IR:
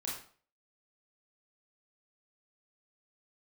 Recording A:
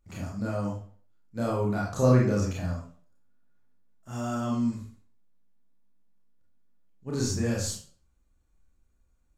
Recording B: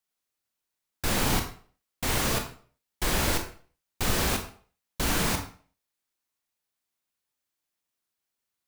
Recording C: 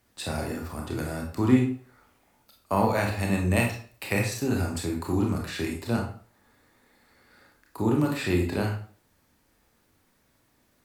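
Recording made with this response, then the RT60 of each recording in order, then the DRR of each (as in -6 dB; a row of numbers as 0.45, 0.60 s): A; 0.45, 0.45, 0.45 s; -5.0, 4.5, 0.0 dB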